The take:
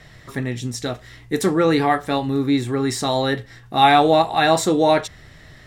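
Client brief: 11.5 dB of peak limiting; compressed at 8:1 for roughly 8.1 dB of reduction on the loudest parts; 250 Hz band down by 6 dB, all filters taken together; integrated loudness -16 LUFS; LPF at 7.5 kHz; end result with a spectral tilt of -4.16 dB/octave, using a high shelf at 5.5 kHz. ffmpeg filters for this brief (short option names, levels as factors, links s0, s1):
-af "lowpass=7500,equalizer=f=250:t=o:g=-8,highshelf=f=5500:g=7.5,acompressor=threshold=0.141:ratio=8,volume=4.22,alimiter=limit=0.473:level=0:latency=1"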